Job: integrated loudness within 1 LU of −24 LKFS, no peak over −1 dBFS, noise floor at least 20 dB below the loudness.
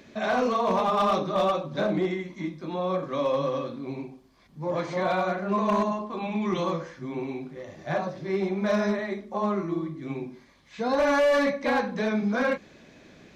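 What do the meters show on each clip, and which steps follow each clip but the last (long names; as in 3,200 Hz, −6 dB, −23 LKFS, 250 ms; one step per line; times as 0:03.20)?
share of clipped samples 1.2%; peaks flattened at −18.0 dBFS; integrated loudness −27.0 LKFS; sample peak −18.0 dBFS; target loudness −24.0 LKFS
→ clipped peaks rebuilt −18 dBFS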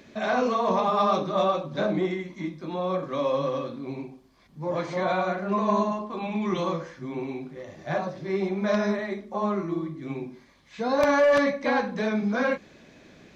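share of clipped samples 0.0%; integrated loudness −26.5 LKFS; sample peak −9.0 dBFS; target loudness −24.0 LKFS
→ level +2.5 dB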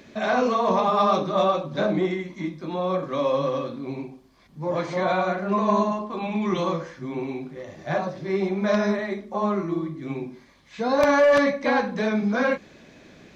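integrated loudness −24.0 LKFS; sample peak −6.5 dBFS; background noise floor −52 dBFS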